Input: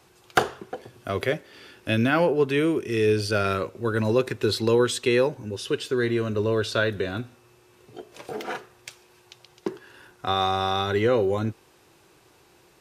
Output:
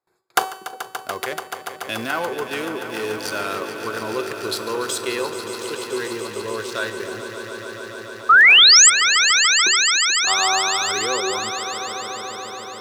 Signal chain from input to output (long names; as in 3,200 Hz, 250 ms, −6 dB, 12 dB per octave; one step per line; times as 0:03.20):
adaptive Wiener filter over 15 samples
RIAA equalisation recording
noise gate with hold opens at −51 dBFS
dynamic equaliser 1,000 Hz, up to +8 dB, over −42 dBFS, Q 2.1
in parallel at +2 dB: output level in coarse steps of 15 dB
on the sum: tuned comb filter 380 Hz, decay 0.79 s, mix 70%
sound drawn into the spectrogram rise, 0:08.29–0:08.90, 1,200–8,300 Hz −12 dBFS
on a send: echo that builds up and dies away 144 ms, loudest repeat 5, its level −12 dB
on the sum: level +2.5 dB